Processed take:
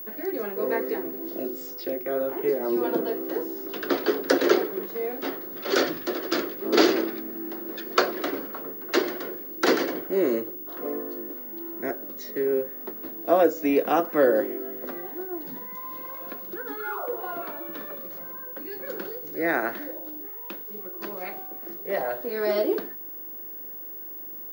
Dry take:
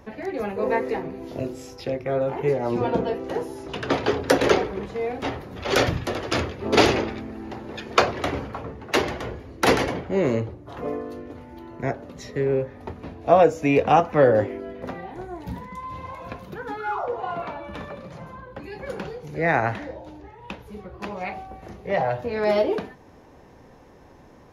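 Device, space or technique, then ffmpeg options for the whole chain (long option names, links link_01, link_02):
old television with a line whistle: -af "highpass=frequency=230:width=0.5412,highpass=frequency=230:width=1.3066,equalizer=frequency=340:width_type=q:width=4:gain=8,equalizer=frequency=850:width_type=q:width=4:gain=-7,equalizer=frequency=1500:width_type=q:width=4:gain=4,equalizer=frequency=2500:width_type=q:width=4:gain=-6,equalizer=frequency=4600:width_type=q:width=4:gain=5,lowpass=frequency=8900:width=0.5412,lowpass=frequency=8900:width=1.3066,aeval=exprs='val(0)+0.0251*sin(2*PI*15625*n/s)':channel_layout=same,volume=-3.5dB"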